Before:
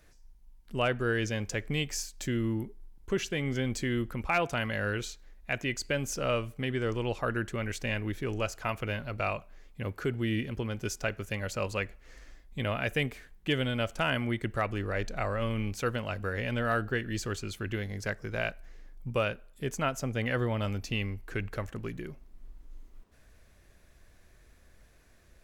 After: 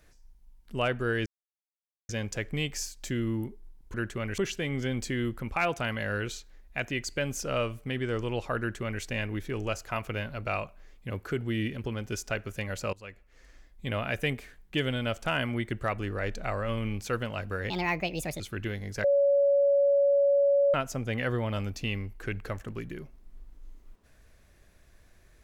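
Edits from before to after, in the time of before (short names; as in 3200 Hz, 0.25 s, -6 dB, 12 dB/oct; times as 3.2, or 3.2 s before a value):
1.26 insert silence 0.83 s
7.32–7.76 copy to 3.11
11.66–12.65 fade in, from -18.5 dB
16.43–17.48 speed 150%
18.12–19.82 bleep 563 Hz -19.5 dBFS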